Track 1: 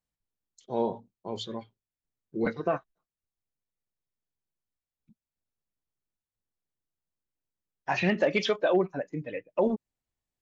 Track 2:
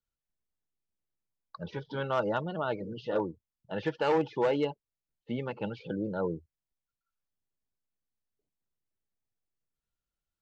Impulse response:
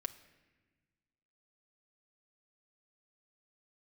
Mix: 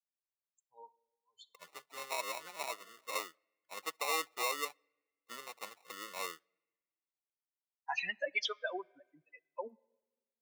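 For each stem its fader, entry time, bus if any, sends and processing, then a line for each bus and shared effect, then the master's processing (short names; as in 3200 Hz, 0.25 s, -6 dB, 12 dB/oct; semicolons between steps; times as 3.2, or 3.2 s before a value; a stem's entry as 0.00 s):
-2.5 dB, 0.00 s, send -11.5 dB, per-bin expansion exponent 3; auto duck -24 dB, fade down 1.50 s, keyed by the second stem
-1.5 dB, 0.00 s, send -18.5 dB, treble ducked by the level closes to 740 Hz, closed at -25 dBFS; sample-rate reducer 1600 Hz, jitter 0%; upward expander 1.5:1, over -45 dBFS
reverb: on, pre-delay 3 ms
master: HPF 900 Hz 12 dB/oct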